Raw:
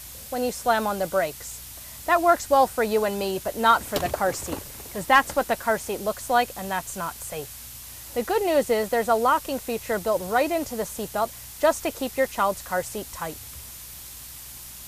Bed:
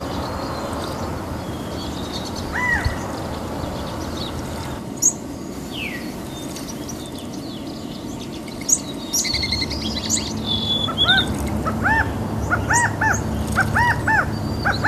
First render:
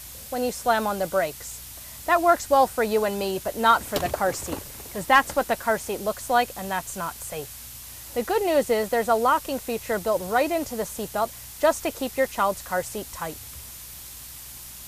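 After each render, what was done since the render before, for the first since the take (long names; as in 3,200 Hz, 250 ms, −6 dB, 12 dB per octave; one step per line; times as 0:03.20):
no processing that can be heard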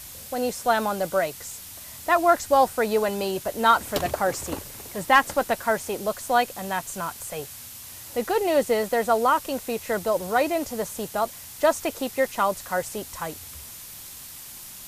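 hum removal 60 Hz, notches 2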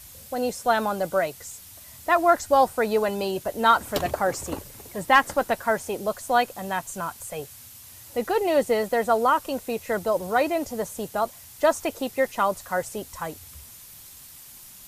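broadband denoise 6 dB, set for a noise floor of −41 dBFS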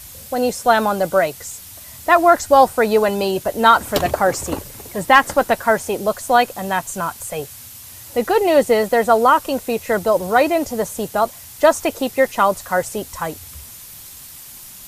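level +7.5 dB
brickwall limiter −1 dBFS, peak gain reduction 2 dB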